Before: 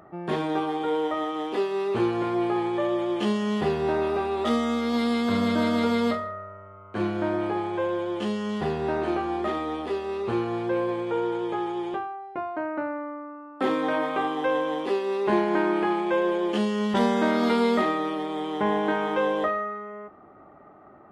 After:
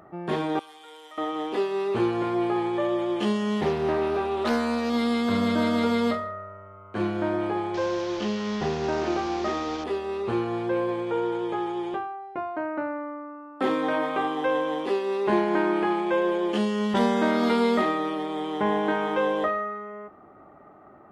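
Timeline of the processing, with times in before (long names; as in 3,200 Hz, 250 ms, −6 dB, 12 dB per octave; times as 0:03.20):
0:00.59–0:01.18: first difference
0:03.61–0:04.90: highs frequency-modulated by the lows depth 0.3 ms
0:07.74–0:09.84: linear delta modulator 32 kbit/s, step −31.5 dBFS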